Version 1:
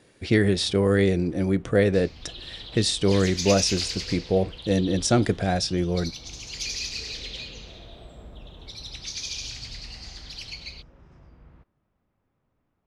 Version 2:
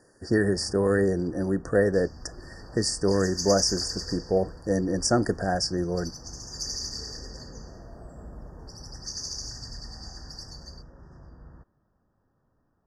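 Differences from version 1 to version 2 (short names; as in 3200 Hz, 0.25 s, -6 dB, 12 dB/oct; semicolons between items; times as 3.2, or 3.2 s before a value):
speech: add low shelf 180 Hz -8.5 dB; first sound +3.5 dB; master: add brick-wall FIR band-stop 1900–4500 Hz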